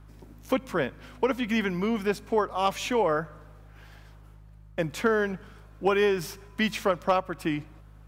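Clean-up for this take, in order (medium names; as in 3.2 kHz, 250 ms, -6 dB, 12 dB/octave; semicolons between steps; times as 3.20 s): clip repair -12 dBFS; de-hum 51.8 Hz, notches 3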